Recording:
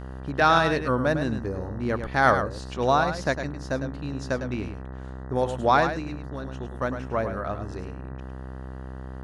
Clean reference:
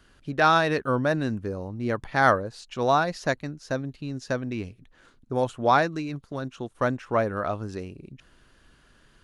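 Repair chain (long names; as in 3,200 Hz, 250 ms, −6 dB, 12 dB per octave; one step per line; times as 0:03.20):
hum removal 64.8 Hz, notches 30
echo removal 105 ms −8.5 dB
level 0 dB, from 0:05.93 +3.5 dB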